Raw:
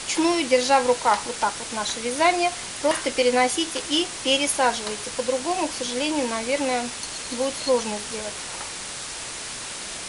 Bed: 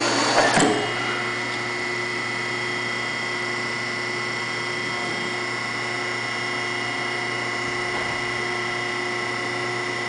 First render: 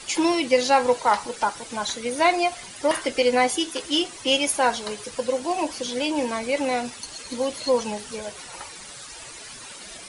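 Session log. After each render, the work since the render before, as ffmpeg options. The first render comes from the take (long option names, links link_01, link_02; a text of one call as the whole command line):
ffmpeg -i in.wav -af "afftdn=noise_reduction=12:noise_floor=-34" out.wav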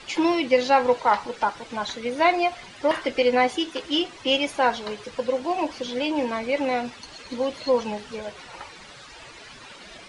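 ffmpeg -i in.wav -af "lowpass=3800" out.wav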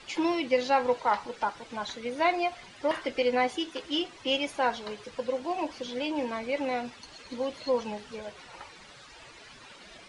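ffmpeg -i in.wav -af "volume=-6dB" out.wav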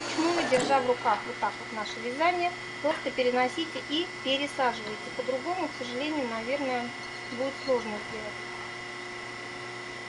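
ffmpeg -i in.wav -i bed.wav -filter_complex "[1:a]volume=-13dB[link_01];[0:a][link_01]amix=inputs=2:normalize=0" out.wav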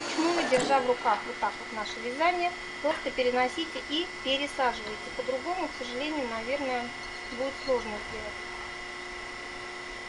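ffmpeg -i in.wav -af "bandreject=frequency=60:width_type=h:width=6,bandreject=frequency=120:width_type=h:width=6,asubboost=boost=6:cutoff=68" out.wav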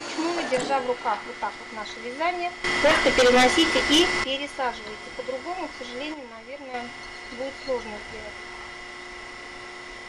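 ffmpeg -i in.wav -filter_complex "[0:a]asettb=1/sr,asplit=3[link_01][link_02][link_03];[link_01]atrim=end=2.644[link_04];[link_02]atrim=start=2.64:end=4.24,asetpts=PTS-STARTPTS,afade=type=in:duration=0.004:curve=qsin,afade=type=out:start_time=1.596:duration=0.004:curve=qsin,aeval=exprs='0.224*sin(PI/2*3.55*val(0)/0.224)':channel_layout=same[link_05];[link_03]atrim=start=4.236[link_06];[link_04][link_05]acrossfade=duration=0.004:curve1=hsin:curve2=qsin[link_07];[link_07][link_06]acrossfade=duration=0.004:curve1=qsin:curve2=hsin,asettb=1/sr,asplit=3[link_08][link_09][link_10];[link_08]atrim=end=7.344[link_11];[link_09]atrim=start=7.34:end=8.35,asetpts=PTS-STARTPTS,afade=type=in:duration=0.004:curve=qsin,afade=type=out:start_time=1.006:duration=0.004:curve=qsin,bandreject=frequency=1100:width=12[link_12];[link_10]atrim=start=8.346[link_13];[link_11][link_12]acrossfade=duration=0.004:curve1=hsin:curve2=qsin[link_14];[link_14][link_13]acrossfade=duration=0.004:curve1=qsin:curve2=hsin,asplit=3[link_15][link_16][link_17];[link_15]atrim=end=6.142[link_18];[link_16]atrim=start=6.138:end=6.742,asetpts=PTS-STARTPTS,volume=-7.5dB[link_19];[link_17]atrim=start=6.738[link_20];[link_18][link_19]acrossfade=duration=0.004:curve1=hsin:curve2=hsin[link_21];[link_21][link_20]acrossfade=duration=0.004:curve1=hsin:curve2=hsin" out.wav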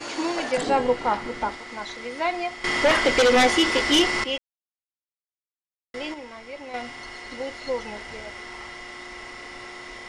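ffmpeg -i in.wav -filter_complex "[0:a]asettb=1/sr,asplit=3[link_01][link_02][link_03];[link_01]atrim=end=0.674[link_04];[link_02]atrim=start=0.67:end=1.55,asetpts=PTS-STARTPTS,afade=type=in:duration=0.004:curve=qsin,afade=type=out:start_time=0.876:duration=0.004:curve=qsin,lowshelf=frequency=410:gain=12[link_05];[link_03]atrim=start=1.546[link_06];[link_04][link_05]acrossfade=duration=0.004:curve1=hsin:curve2=qsin[link_07];[link_07][link_06]acrossfade=duration=0.004:curve1=qsin:curve2=hsin,asplit=3[link_08][link_09][link_10];[link_08]atrim=end=4.38,asetpts=PTS-STARTPTS,afade=type=out:start_time=4.376:duration=0.004:curve=hsin[link_11];[link_09]atrim=start=4.38:end=5.94,asetpts=PTS-STARTPTS,volume=0[link_12];[link_10]atrim=start=5.94,asetpts=PTS-STARTPTS,afade=type=in:duration=0.004:curve=hsin[link_13];[link_11][link_12][link_13]concat=n=3:v=0:a=1" out.wav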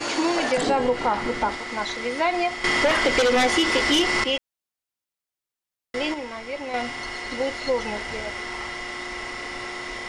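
ffmpeg -i in.wav -filter_complex "[0:a]asplit=2[link_01][link_02];[link_02]alimiter=limit=-21.5dB:level=0:latency=1,volume=0.5dB[link_03];[link_01][link_03]amix=inputs=2:normalize=0,acompressor=threshold=-17dB:ratio=6" out.wav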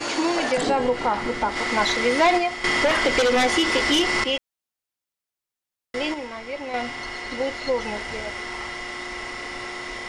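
ffmpeg -i in.wav -filter_complex "[0:a]asplit=3[link_01][link_02][link_03];[link_01]afade=type=out:start_time=1.55:duration=0.02[link_04];[link_02]aeval=exprs='0.237*sin(PI/2*1.58*val(0)/0.237)':channel_layout=same,afade=type=in:start_time=1.55:duration=0.02,afade=type=out:start_time=2.37:duration=0.02[link_05];[link_03]afade=type=in:start_time=2.37:duration=0.02[link_06];[link_04][link_05][link_06]amix=inputs=3:normalize=0,asettb=1/sr,asplit=3[link_07][link_08][link_09];[link_07]atrim=end=6.274[link_10];[link_08]atrim=start=6.27:end=7.83,asetpts=PTS-STARTPTS,afade=type=in:duration=0.004:curve=qsin,afade=type=out:start_time=1.556:duration=0.004:curve=qsin,highshelf=frequency=9500:gain=-6.5[link_11];[link_09]atrim=start=7.826[link_12];[link_10][link_11]acrossfade=duration=0.004:curve1=hsin:curve2=qsin[link_13];[link_13][link_12]acrossfade=duration=0.004:curve1=qsin:curve2=hsin" out.wav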